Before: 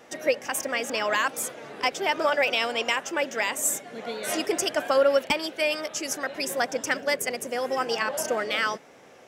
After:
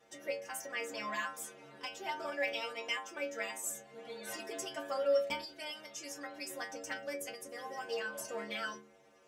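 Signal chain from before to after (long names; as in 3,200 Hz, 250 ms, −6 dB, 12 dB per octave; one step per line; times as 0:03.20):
stiff-string resonator 68 Hz, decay 0.66 s, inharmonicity 0.008
every ending faded ahead of time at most 140 dB per second
level −2 dB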